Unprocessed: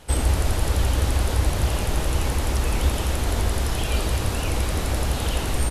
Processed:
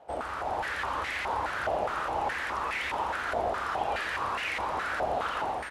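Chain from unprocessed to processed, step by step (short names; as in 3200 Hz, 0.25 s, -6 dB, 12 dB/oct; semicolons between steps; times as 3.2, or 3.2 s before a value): AGC gain up to 4.5 dB; stepped band-pass 4.8 Hz 700–2000 Hz; gain +5 dB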